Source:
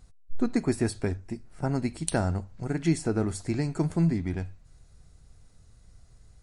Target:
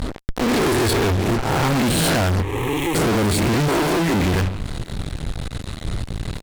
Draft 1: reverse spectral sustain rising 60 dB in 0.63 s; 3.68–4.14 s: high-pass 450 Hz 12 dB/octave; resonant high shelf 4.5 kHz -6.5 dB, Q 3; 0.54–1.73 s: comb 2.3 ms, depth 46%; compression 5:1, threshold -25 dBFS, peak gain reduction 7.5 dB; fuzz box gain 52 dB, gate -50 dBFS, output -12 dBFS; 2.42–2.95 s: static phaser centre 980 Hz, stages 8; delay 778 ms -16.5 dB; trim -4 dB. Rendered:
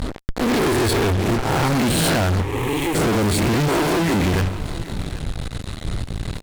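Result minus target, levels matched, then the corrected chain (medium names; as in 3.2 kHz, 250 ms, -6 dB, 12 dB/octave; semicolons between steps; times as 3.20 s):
compression: peak gain reduction +7.5 dB; echo-to-direct +10 dB
reverse spectral sustain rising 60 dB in 0.63 s; 3.68–4.14 s: high-pass 450 Hz 12 dB/octave; resonant high shelf 4.5 kHz -6.5 dB, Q 3; 0.54–1.73 s: comb 2.3 ms, depth 46%; fuzz box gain 52 dB, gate -50 dBFS, output -12 dBFS; 2.42–2.95 s: static phaser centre 980 Hz, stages 8; delay 778 ms -26.5 dB; trim -4 dB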